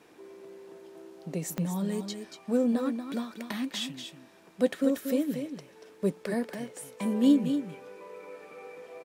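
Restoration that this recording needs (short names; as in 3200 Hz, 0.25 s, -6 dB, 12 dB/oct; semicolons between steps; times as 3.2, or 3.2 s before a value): de-click; inverse comb 0.235 s -8 dB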